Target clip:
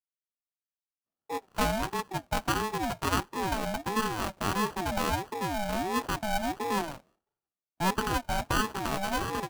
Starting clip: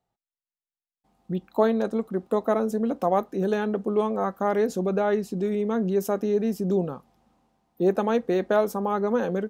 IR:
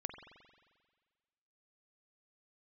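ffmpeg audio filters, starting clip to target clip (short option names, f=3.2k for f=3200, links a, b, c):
-af "acrusher=samples=29:mix=1:aa=0.000001,agate=range=-33dB:threshold=-51dB:ratio=3:detection=peak,aeval=exprs='val(0)*sin(2*PI*520*n/s+520*0.25/1.5*sin(2*PI*1.5*n/s))':c=same,volume=-3dB"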